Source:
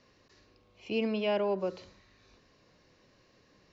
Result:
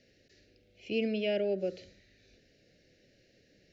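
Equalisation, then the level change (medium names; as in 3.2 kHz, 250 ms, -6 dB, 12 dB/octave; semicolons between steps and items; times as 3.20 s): Chebyshev band-stop 600–1800 Hz, order 2; 0.0 dB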